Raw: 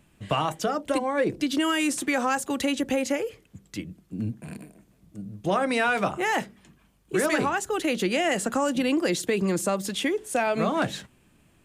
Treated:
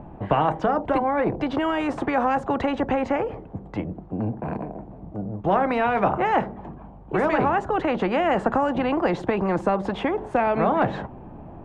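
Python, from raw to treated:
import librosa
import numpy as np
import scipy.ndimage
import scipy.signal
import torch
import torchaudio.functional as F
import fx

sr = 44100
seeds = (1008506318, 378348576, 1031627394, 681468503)

y = fx.lowpass_res(x, sr, hz=810.0, q=3.8)
y = fx.low_shelf(y, sr, hz=330.0, db=5.5)
y = fx.spectral_comp(y, sr, ratio=2.0)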